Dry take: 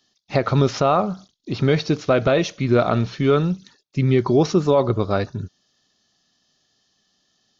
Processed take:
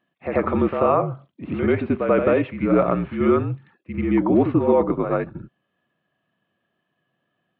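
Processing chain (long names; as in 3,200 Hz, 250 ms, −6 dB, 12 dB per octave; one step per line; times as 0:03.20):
high-frequency loss of the air 180 metres
single-sideband voice off tune −54 Hz 190–2,700 Hz
backwards echo 88 ms −6.5 dB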